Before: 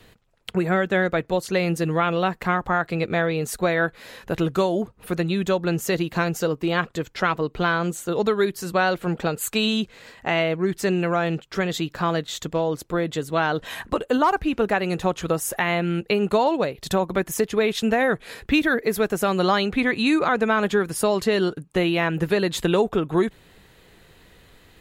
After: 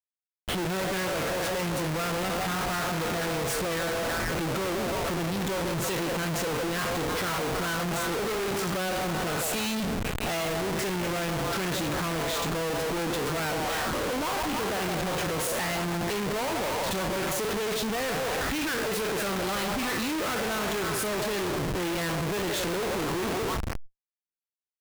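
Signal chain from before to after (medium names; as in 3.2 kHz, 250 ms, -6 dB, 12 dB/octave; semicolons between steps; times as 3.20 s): spectral sustain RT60 0.46 s; repeats whose band climbs or falls 163 ms, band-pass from 660 Hz, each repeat 0.7 oct, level -4 dB; valve stage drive 25 dB, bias 0.5; Schmitt trigger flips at -36.5 dBFS; decay stretcher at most 85 dB/s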